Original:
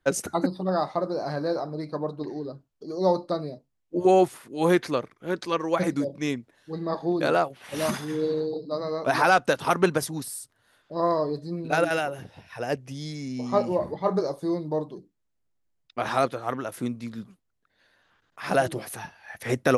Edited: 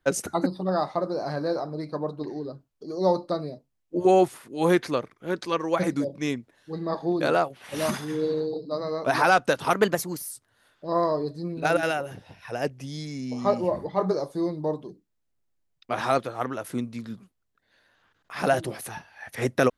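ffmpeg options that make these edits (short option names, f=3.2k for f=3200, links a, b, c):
-filter_complex "[0:a]asplit=3[a][b][c];[a]atrim=end=9.734[d];[b]atrim=start=9.73:end=10.39,asetpts=PTS-STARTPTS,asetrate=49833,aresample=44100[e];[c]atrim=start=10.386[f];[d][e]acrossfade=d=0.004:c1=hsin:c2=hsin[g];[g][f]acrossfade=d=0.004:c1=hsin:c2=hsin"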